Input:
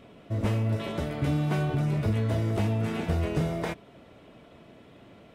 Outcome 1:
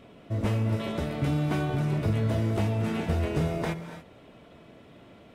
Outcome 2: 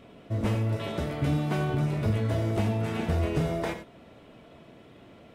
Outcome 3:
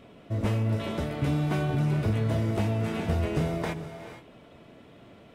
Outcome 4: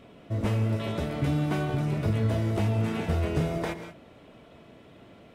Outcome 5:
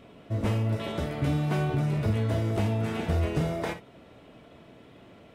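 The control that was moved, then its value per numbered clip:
reverb whose tail is shaped and stops, gate: 310, 120, 500, 210, 80 milliseconds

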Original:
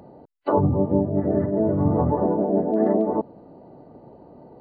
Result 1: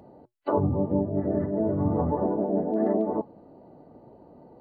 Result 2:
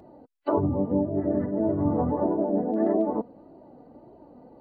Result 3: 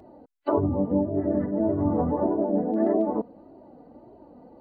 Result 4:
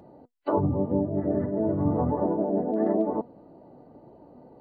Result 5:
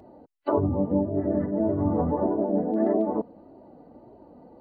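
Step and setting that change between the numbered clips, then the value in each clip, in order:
flanger, regen: −81, +30, +4, +73, −22%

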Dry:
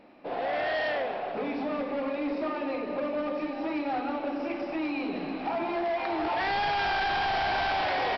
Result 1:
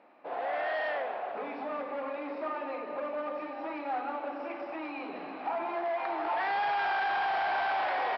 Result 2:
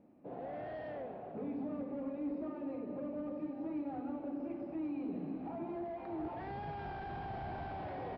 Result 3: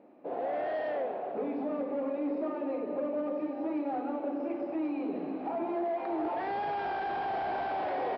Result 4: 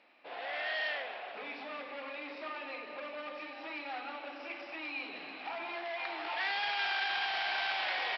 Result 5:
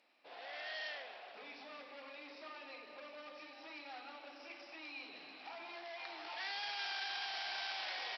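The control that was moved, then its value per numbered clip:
resonant band-pass, frequency: 1,100, 120, 400, 2,900, 7,600 Hertz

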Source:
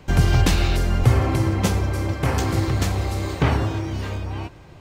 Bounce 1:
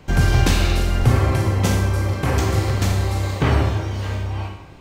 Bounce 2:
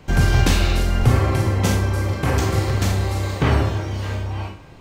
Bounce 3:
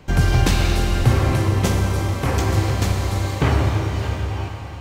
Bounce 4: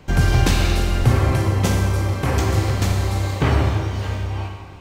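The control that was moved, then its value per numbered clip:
four-comb reverb, RT60: 0.76, 0.36, 4.1, 1.6 seconds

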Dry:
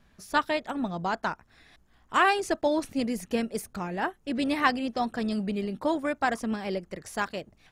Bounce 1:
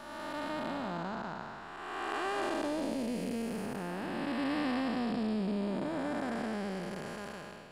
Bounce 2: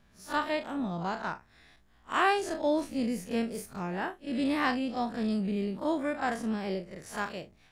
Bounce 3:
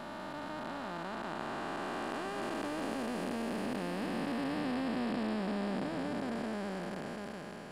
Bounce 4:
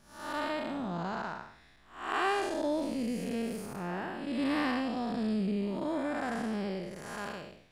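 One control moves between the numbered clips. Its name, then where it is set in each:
spectrum smeared in time, width: 658, 81, 1,720, 267 milliseconds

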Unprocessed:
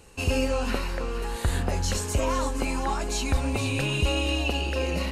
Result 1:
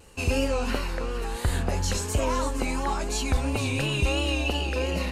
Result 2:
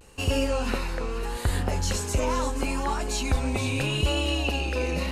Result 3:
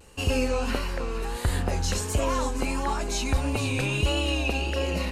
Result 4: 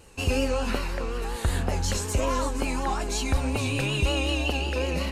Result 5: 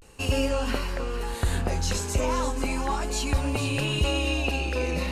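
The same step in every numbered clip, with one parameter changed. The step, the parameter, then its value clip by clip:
pitch vibrato, speed: 2.9, 0.78, 1.5, 5.4, 0.36 Hertz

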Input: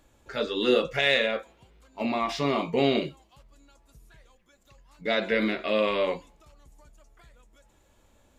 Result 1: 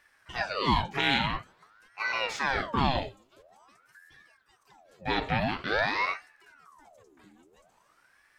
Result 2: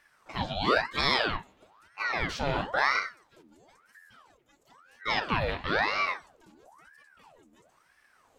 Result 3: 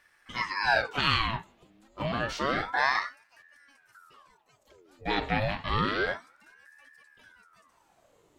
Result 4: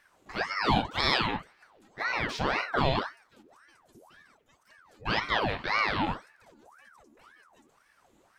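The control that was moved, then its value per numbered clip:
ring modulator whose carrier an LFO sweeps, at: 0.48, 1, 0.29, 1.9 Hertz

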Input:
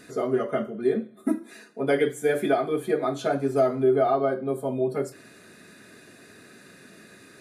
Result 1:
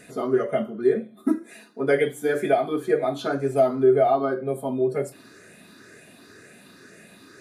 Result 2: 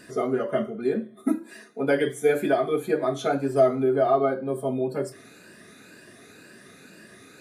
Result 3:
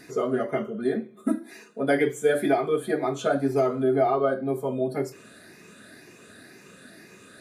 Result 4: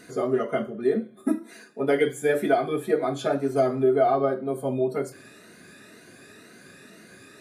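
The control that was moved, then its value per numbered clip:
rippled gain that drifts along the octave scale, ripples per octave: 0.51, 1.3, 0.76, 1.9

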